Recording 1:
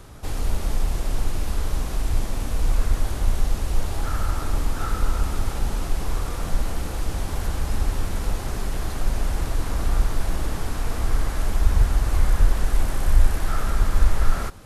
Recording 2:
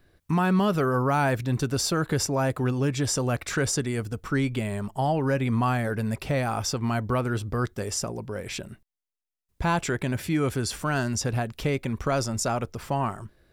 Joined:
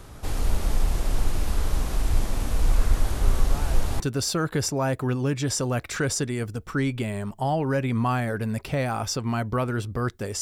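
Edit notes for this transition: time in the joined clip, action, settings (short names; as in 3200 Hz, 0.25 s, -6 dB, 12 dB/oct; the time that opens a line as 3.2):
recording 1
3.23 add recording 2 from 0.8 s 0.77 s -15.5 dB
4 switch to recording 2 from 1.57 s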